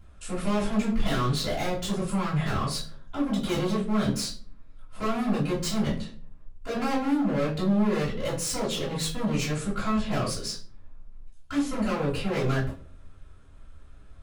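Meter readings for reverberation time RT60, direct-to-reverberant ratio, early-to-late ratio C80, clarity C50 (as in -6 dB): 0.45 s, -10.0 dB, 13.0 dB, 6.5 dB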